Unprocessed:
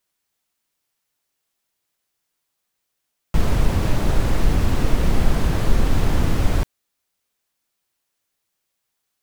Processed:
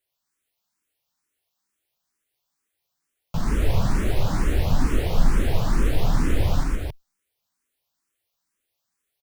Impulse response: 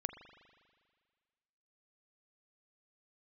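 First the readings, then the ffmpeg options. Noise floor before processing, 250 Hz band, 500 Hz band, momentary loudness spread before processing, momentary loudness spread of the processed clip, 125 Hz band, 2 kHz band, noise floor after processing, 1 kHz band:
−77 dBFS, −3.0 dB, −2.5 dB, 3 LU, 6 LU, −2.5 dB, −2.5 dB, −80 dBFS, −2.5 dB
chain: -filter_complex "[0:a]aecho=1:1:119.5|271.1:0.708|0.631,asplit=2[link_01][link_02];[link_02]afreqshift=2.2[link_03];[link_01][link_03]amix=inputs=2:normalize=1,volume=-2.5dB"

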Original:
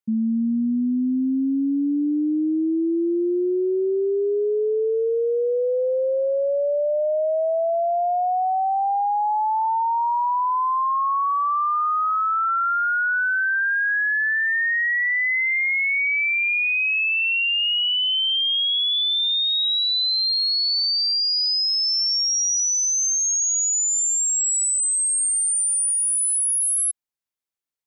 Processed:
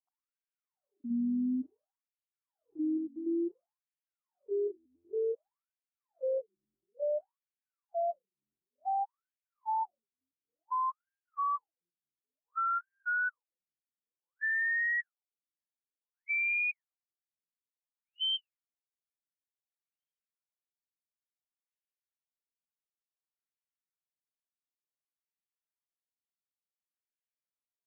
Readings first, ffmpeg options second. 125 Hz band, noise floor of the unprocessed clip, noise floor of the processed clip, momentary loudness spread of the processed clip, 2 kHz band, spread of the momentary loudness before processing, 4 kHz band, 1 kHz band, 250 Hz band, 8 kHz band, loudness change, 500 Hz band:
can't be measured, −21 dBFS, below −85 dBFS, 14 LU, −15.0 dB, 4 LU, −23.0 dB, −16.0 dB, −14.5 dB, below −40 dB, −14.0 dB, −16.5 dB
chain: -filter_complex "[0:a]afreqshift=-19,asplit=3[link_01][link_02][link_03];[link_02]adelay=111,afreqshift=-39,volume=-21dB[link_04];[link_03]adelay=222,afreqshift=-78,volume=-31.2dB[link_05];[link_01][link_04][link_05]amix=inputs=3:normalize=0,afftfilt=real='re*between(b*sr/1024,210*pow(2300/210,0.5+0.5*sin(2*PI*0.56*pts/sr))/1.41,210*pow(2300/210,0.5+0.5*sin(2*PI*0.56*pts/sr))*1.41)':imag='im*between(b*sr/1024,210*pow(2300/210,0.5+0.5*sin(2*PI*0.56*pts/sr))/1.41,210*pow(2300/210,0.5+0.5*sin(2*PI*0.56*pts/sr))*1.41)':win_size=1024:overlap=0.75,volume=-9dB"

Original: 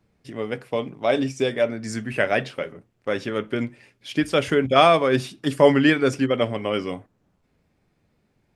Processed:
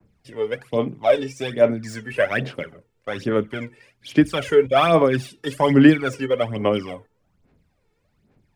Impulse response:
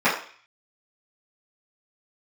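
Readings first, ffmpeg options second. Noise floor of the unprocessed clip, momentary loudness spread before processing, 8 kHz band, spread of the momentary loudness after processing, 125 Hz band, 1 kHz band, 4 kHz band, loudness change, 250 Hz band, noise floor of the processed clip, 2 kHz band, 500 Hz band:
−69 dBFS, 17 LU, can't be measured, 18 LU, +3.0 dB, −1.0 dB, −2.5 dB, +2.0 dB, +3.5 dB, −68 dBFS, −0.5 dB, +1.5 dB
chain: -filter_complex "[0:a]adynamicequalizer=threshold=0.00891:dfrequency=3900:dqfactor=1.3:tfrequency=3900:tqfactor=1.3:attack=5:release=100:ratio=0.375:range=2:mode=cutabove:tftype=bell,aphaser=in_gain=1:out_gain=1:delay=2.3:decay=0.68:speed=1.2:type=sinusoidal,acrossover=split=150|1300|3900[link_01][link_02][link_03][link_04];[link_04]asoftclip=type=hard:threshold=-36.5dB[link_05];[link_01][link_02][link_03][link_05]amix=inputs=4:normalize=0,volume=-2.5dB"

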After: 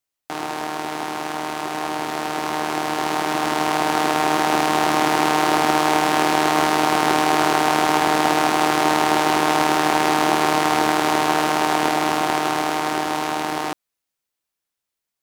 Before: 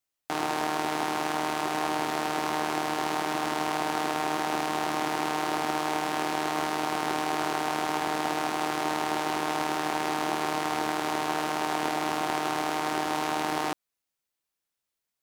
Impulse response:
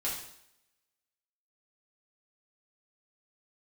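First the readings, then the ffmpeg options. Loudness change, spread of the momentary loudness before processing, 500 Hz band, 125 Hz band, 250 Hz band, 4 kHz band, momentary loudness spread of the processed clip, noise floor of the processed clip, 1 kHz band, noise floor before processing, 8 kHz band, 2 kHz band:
+9.5 dB, 0 LU, +9.5 dB, +9.5 dB, +9.5 dB, +9.5 dB, 9 LU, −83 dBFS, +9.5 dB, −85 dBFS, +9.5 dB, +9.5 dB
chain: -af "dynaudnorm=framelen=400:gausssize=17:maxgain=11.5dB,volume=1.5dB"

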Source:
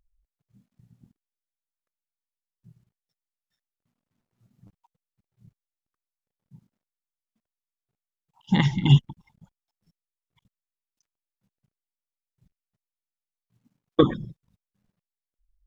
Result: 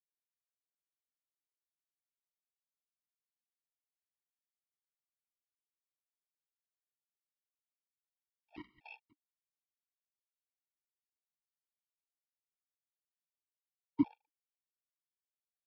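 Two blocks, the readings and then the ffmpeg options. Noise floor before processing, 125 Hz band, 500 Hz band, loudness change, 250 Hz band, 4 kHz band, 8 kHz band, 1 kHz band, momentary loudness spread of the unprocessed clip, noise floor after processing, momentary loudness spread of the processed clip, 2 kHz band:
below −85 dBFS, −36.0 dB, −29.5 dB, −15.0 dB, −14.5 dB, −34.5 dB, can't be measured, −21.5 dB, 9 LU, below −85 dBFS, 19 LU, −22.5 dB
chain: -filter_complex "[0:a]highpass=frequency=250:width_type=q:width=0.5412,highpass=frequency=250:width_type=q:width=1.307,lowpass=frequency=3200:width_type=q:width=0.5176,lowpass=frequency=3200:width_type=q:width=0.7071,lowpass=frequency=3200:width_type=q:width=1.932,afreqshift=-200,aresample=11025,acrusher=bits=5:dc=4:mix=0:aa=0.000001,aresample=44100,asplit=3[link_01][link_02][link_03];[link_01]bandpass=frequency=300:width_type=q:width=8,volume=0dB[link_04];[link_02]bandpass=frequency=870:width_type=q:width=8,volume=-6dB[link_05];[link_03]bandpass=frequency=2240:width_type=q:width=8,volume=-9dB[link_06];[link_04][link_05][link_06]amix=inputs=3:normalize=0,afftfilt=real='re*gt(sin(2*PI*2.1*pts/sr)*(1-2*mod(floor(b*sr/1024/460),2)),0)':imag='im*gt(sin(2*PI*2.1*pts/sr)*(1-2*mod(floor(b*sr/1024/460),2)),0)':win_size=1024:overlap=0.75,volume=-5dB"

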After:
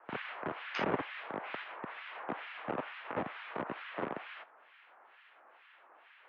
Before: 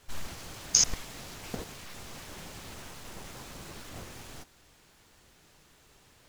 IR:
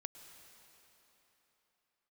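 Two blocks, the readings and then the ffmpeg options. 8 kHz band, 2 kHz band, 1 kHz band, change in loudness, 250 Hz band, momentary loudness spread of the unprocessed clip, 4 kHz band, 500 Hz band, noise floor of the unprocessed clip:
below −40 dB, +5.5 dB, +8.5 dB, −7.0 dB, +4.0 dB, 21 LU, −13.0 dB, +8.0 dB, −62 dBFS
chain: -filter_complex "[0:a]acrossover=split=1500[link_01][link_02];[link_01]aeval=exprs='val(0)*(1-1/2+1/2*cos(2*PI*2.2*n/s))':channel_layout=same[link_03];[link_02]aeval=exprs='val(0)*(1-1/2-1/2*cos(2*PI*2.2*n/s))':channel_layout=same[link_04];[link_03][link_04]amix=inputs=2:normalize=0,acrossover=split=710|1200[link_05][link_06][link_07];[link_05]acrusher=bits=6:mix=0:aa=0.000001[link_08];[link_08][link_06][link_07]amix=inputs=3:normalize=0,acrossover=split=240 2400:gain=0.141 1 0.141[link_09][link_10][link_11];[link_09][link_10][link_11]amix=inputs=3:normalize=0,highpass=frequency=230:width_type=q:width=0.5412,highpass=frequency=230:width_type=q:width=1.307,lowpass=frequency=3300:width_type=q:width=0.5176,lowpass=frequency=3300:width_type=q:width=0.7071,lowpass=frequency=3300:width_type=q:width=1.932,afreqshift=-85,volume=14dB"

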